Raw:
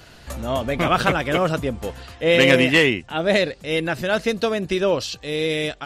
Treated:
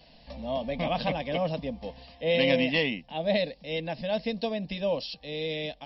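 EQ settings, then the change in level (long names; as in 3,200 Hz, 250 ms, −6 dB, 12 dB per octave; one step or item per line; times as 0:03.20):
linear-phase brick-wall low-pass 5,600 Hz
phaser with its sweep stopped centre 370 Hz, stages 6
−6.0 dB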